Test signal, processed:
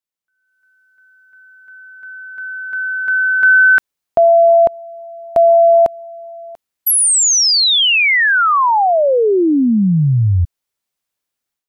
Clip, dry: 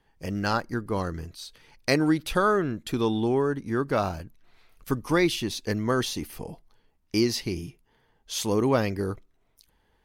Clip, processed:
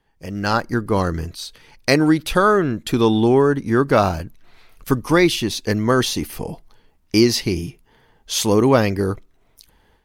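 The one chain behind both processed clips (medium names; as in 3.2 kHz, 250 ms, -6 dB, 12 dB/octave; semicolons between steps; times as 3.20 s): level rider gain up to 11 dB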